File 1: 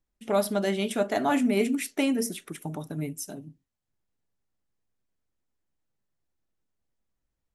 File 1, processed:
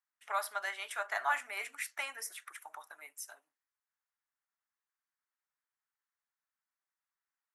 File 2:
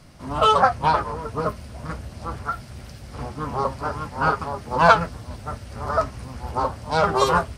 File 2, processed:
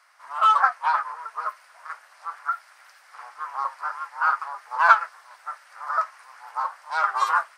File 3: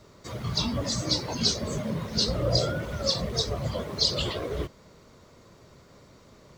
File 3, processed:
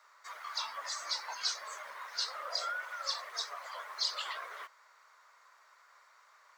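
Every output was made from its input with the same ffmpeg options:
ffmpeg -i in.wav -af "highpass=frequency=1000:width=0.5412,highpass=frequency=1000:width=1.3066,highshelf=frequency=2300:width_type=q:width=1.5:gain=-7.5" out.wav

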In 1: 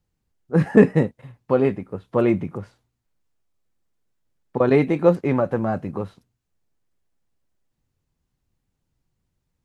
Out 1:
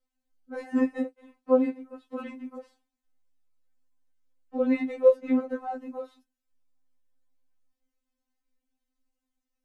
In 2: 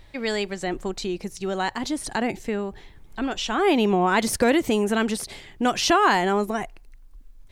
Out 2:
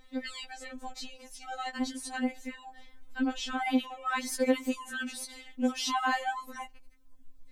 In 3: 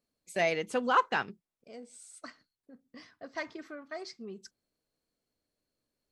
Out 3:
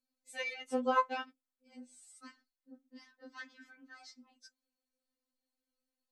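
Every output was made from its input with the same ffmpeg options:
ffmpeg -i in.wav -filter_complex "[0:a]asplit=2[link_01][link_02];[link_02]acompressor=threshold=-26dB:ratio=16,volume=-3dB[link_03];[link_01][link_03]amix=inputs=2:normalize=0,afftfilt=real='re*3.46*eq(mod(b,12),0)':imag='im*3.46*eq(mod(b,12),0)':win_size=2048:overlap=0.75,volume=-9dB" out.wav

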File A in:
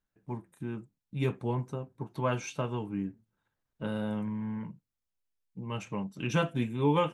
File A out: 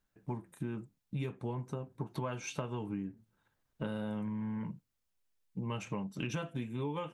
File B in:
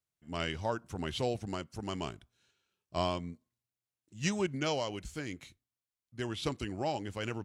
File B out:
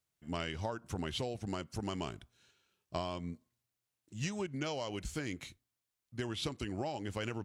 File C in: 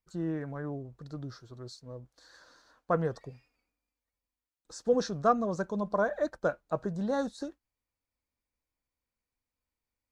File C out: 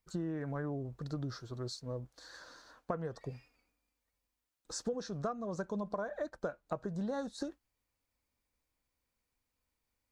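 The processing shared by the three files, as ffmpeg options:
ffmpeg -i in.wav -af "acompressor=threshold=-38dB:ratio=16,volume=4.5dB" out.wav

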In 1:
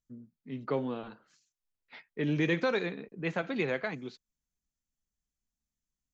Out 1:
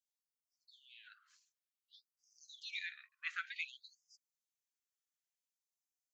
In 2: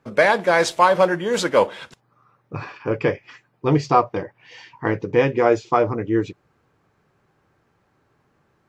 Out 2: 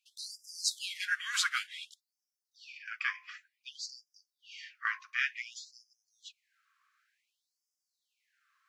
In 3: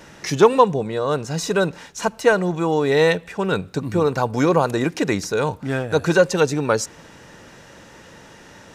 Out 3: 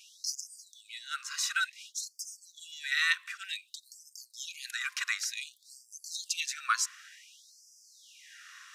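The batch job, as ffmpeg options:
ffmpeg -i in.wav -af "bandreject=frequency=51.6:width_type=h:width=4,bandreject=frequency=103.2:width_type=h:width=4,bandreject=frequency=154.8:width_type=h:width=4,bandreject=frequency=206.4:width_type=h:width=4,bandreject=frequency=258:width_type=h:width=4,bandreject=frequency=309.6:width_type=h:width=4,bandreject=frequency=361.2:width_type=h:width=4,bandreject=frequency=412.8:width_type=h:width=4,bandreject=frequency=464.4:width_type=h:width=4,bandreject=frequency=516:width_type=h:width=4,bandreject=frequency=567.6:width_type=h:width=4,bandreject=frequency=619.2:width_type=h:width=4,bandreject=frequency=670.8:width_type=h:width=4,bandreject=frequency=722.4:width_type=h:width=4,bandreject=frequency=774:width_type=h:width=4,bandreject=frequency=825.6:width_type=h:width=4,bandreject=frequency=877.2:width_type=h:width=4,bandreject=frequency=928.8:width_type=h:width=4,bandreject=frequency=980.4:width_type=h:width=4,bandreject=frequency=1032:width_type=h:width=4,bandreject=frequency=1083.6:width_type=h:width=4,asubboost=boost=3:cutoff=63,afftfilt=real='re*gte(b*sr/1024,1000*pow(4800/1000,0.5+0.5*sin(2*PI*0.55*pts/sr)))':imag='im*gte(b*sr/1024,1000*pow(4800/1000,0.5+0.5*sin(2*PI*0.55*pts/sr)))':win_size=1024:overlap=0.75,volume=-3dB" out.wav

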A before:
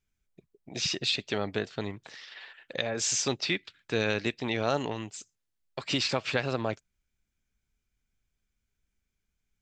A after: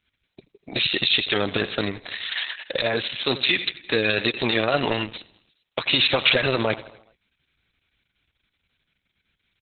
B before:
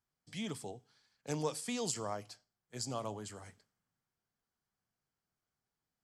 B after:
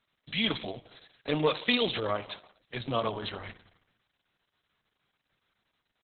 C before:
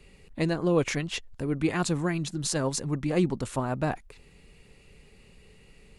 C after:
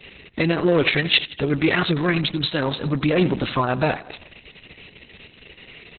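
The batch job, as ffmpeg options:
ffmpeg -i in.wav -af "equalizer=frequency=140:width=0.43:gain=-3.5,asoftclip=type=tanh:threshold=-19.5dB,highpass=frequency=57:width=0.5412,highpass=frequency=57:width=1.3066,highshelf=frequency=2600:gain=12,bandreject=frequency=850:width=12,aecho=1:1:83|166|249|332|415:0.126|0.073|0.0424|0.0246|0.0142,alimiter=level_in=17.5dB:limit=-1dB:release=50:level=0:latency=1,volume=-5.5dB" -ar 48000 -c:a libopus -b:a 6k out.opus

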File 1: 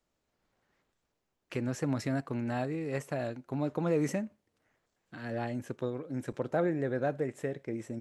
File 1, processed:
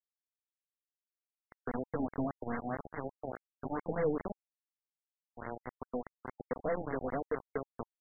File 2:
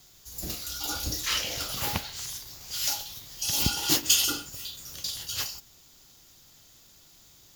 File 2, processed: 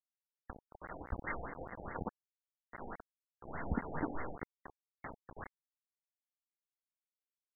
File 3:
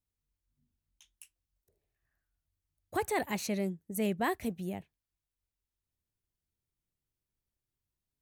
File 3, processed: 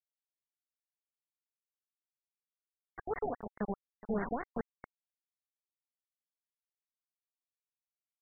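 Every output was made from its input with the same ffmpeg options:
ffmpeg -i in.wav -filter_complex "[0:a]aeval=exprs='if(lt(val(0),0),0.708*val(0),val(0))':channel_layout=same,aecho=1:1:4.3:0.7,acrossover=split=770[link_01][link_02];[link_01]crystalizer=i=4:c=0[link_03];[link_03][link_02]amix=inputs=2:normalize=0,acrossover=split=180|1000[link_04][link_05][link_06];[link_04]adelay=50[link_07];[link_05]adelay=110[link_08];[link_07][link_08][link_06]amix=inputs=3:normalize=0,aresample=11025,acrusher=bits=4:mix=0:aa=0.000001,aresample=44100,afftfilt=real='re*lt(b*sr/1024,820*pow(2200/820,0.5+0.5*sin(2*PI*4.8*pts/sr)))':imag='im*lt(b*sr/1024,820*pow(2200/820,0.5+0.5*sin(2*PI*4.8*pts/sr)))':win_size=1024:overlap=0.75,volume=-4dB" out.wav

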